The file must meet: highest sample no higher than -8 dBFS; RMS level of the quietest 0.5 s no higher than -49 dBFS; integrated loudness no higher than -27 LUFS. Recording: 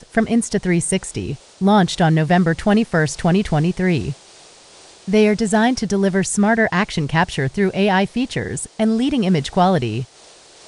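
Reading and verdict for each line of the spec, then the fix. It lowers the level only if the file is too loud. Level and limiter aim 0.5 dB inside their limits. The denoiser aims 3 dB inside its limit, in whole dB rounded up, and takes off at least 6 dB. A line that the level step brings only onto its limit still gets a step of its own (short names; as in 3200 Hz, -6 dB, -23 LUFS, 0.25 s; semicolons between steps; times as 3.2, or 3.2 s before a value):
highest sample -4.0 dBFS: fail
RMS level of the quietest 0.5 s -46 dBFS: fail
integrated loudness -18.0 LUFS: fail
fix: gain -9.5 dB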